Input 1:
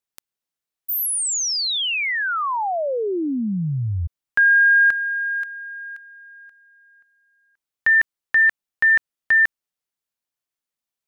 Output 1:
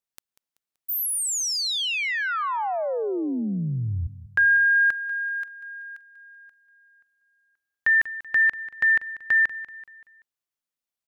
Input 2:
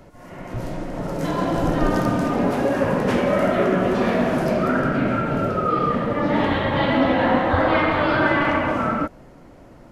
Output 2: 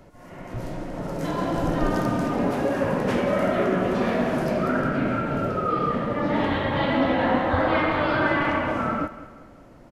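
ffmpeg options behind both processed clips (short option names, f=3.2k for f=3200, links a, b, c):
-af "aecho=1:1:191|382|573|764:0.168|0.0739|0.0325|0.0143,volume=-3.5dB"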